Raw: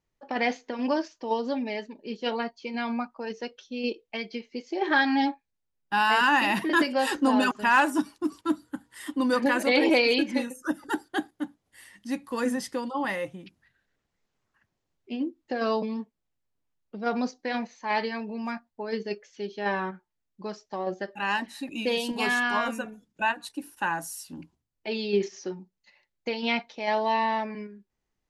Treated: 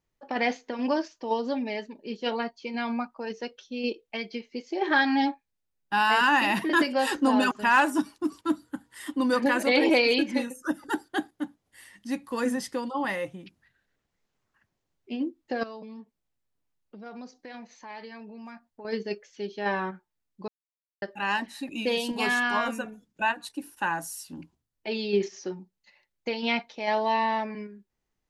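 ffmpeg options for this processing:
ffmpeg -i in.wav -filter_complex "[0:a]asettb=1/sr,asplit=3[link_01][link_02][link_03];[link_01]atrim=end=15.634[link_04];[link_02]atrim=start=15.63:end=18.85,asetpts=PTS-STARTPTS,afade=type=in:duration=0.004:curve=qsin,afade=type=out:start_time=3.216:duration=0.004:curve=qsin,acompressor=threshold=-45dB:ratio=2.5:attack=3.2:release=140:knee=1:detection=peak[link_05];[link_03]atrim=start=18.846[link_06];[link_04][link_05]acrossfade=duration=0.004:curve1=hsin:curve2=qsin[link_07];[link_07][link_06]acrossfade=duration=0.004:curve1=qsin:curve2=hsin,asplit=3[link_08][link_09][link_10];[link_08]atrim=end=20.48,asetpts=PTS-STARTPTS,afade=type=out:start_time=20.476:duration=0.004:curve=hsin[link_11];[link_09]atrim=start=20.48:end=21.02,asetpts=PTS-STARTPTS,volume=0[link_12];[link_10]atrim=start=21.02,asetpts=PTS-STARTPTS,afade=type=in:duration=0.004:curve=hsin[link_13];[link_11][link_12][link_13]concat=n=3:v=0:a=1" out.wav

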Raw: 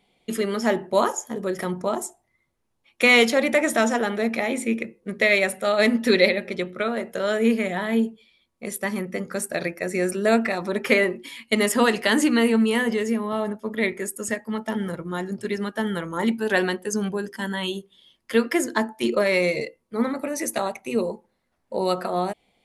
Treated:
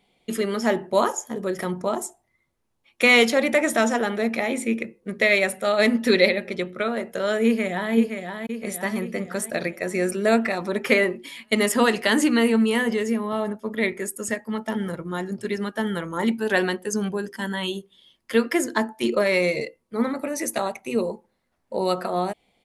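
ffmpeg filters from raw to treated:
ffmpeg -i in.wav -filter_complex "[0:a]asplit=2[link_01][link_02];[link_02]afade=type=in:start_time=7.45:duration=0.01,afade=type=out:start_time=7.94:duration=0.01,aecho=0:1:520|1040|1560|2080|2600|3120|3640:0.501187|0.275653|0.151609|0.083385|0.0458618|0.025224|0.0138732[link_03];[link_01][link_03]amix=inputs=2:normalize=0" out.wav

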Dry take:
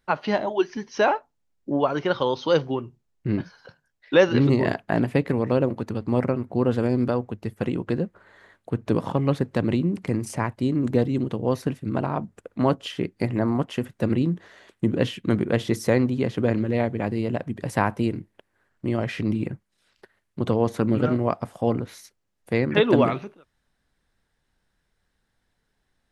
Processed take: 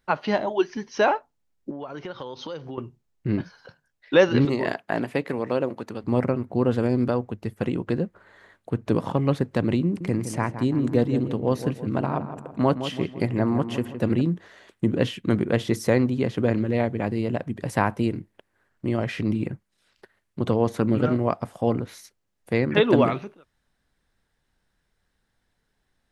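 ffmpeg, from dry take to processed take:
ffmpeg -i in.wav -filter_complex "[0:a]asettb=1/sr,asplit=3[link_01][link_02][link_03];[link_01]atrim=end=1.704[link_04];[link_02]atrim=start=1.7:end=2.78,asetpts=PTS-STARTPTS,afade=type=in:duration=0.004:curve=qsin,afade=type=out:start_time=1.076:duration=0.004:curve=qsin,acompressor=threshold=-32dB:ratio=6:attack=3.2:release=140:knee=1:detection=peak[link_05];[link_03]atrim=start=2.776[link_06];[link_04][link_05]acrossfade=duration=0.004:curve1=hsin:curve2=qsin[link_07];[link_07][link_06]acrossfade=duration=0.004:curve1=qsin:curve2=hsin,asettb=1/sr,asplit=3[link_08][link_09][link_10];[link_08]atrim=end=4.454[link_11];[link_09]atrim=start=4.45:end=6.04,asetpts=PTS-STARTPTS,afade=type=in:duration=0.004:curve=qsin,afade=type=out:start_time=1.586:duration=0.004:curve=qsin,highpass=frequency=400:poles=1[link_12];[link_10]atrim=start=6.036[link_13];[link_11][link_12]acrossfade=duration=0.004:curve1=hsin:curve2=qsin[link_14];[link_14][link_13]acrossfade=duration=0.004:curve1=qsin:curve2=hsin,asettb=1/sr,asplit=3[link_15][link_16][link_17];[link_15]atrim=end=9.844[link_18];[link_16]atrim=start=9.84:end=14.21,asetpts=PTS-STARTPTS,afade=type=in:duration=0.004:curve=qsin,afade=type=out:start_time=4.366:duration=0.004:curve=qsin,asplit=2[link_19][link_20];[link_20]adelay=164,lowpass=frequency=2200:poles=1,volume=-10dB,asplit=2[link_21][link_22];[link_22]adelay=164,lowpass=frequency=2200:poles=1,volume=0.48,asplit=2[link_23][link_24];[link_24]adelay=164,lowpass=frequency=2200:poles=1,volume=0.48,asplit=2[link_25][link_26];[link_26]adelay=164,lowpass=frequency=2200:poles=1,volume=0.48,asplit=2[link_27][link_28];[link_28]adelay=164,lowpass=frequency=2200:poles=1,volume=0.48[link_29];[link_19][link_21][link_23][link_25][link_27][link_29]amix=inputs=6:normalize=0,atrim=end_sample=192717[link_30];[link_17]atrim=start=14.206[link_31];[link_18][link_30]acrossfade=duration=0.004:curve1=hsin:curve2=qsin[link_32];[link_32][link_31]acrossfade=duration=0.004:curve1=qsin:curve2=hsin" out.wav

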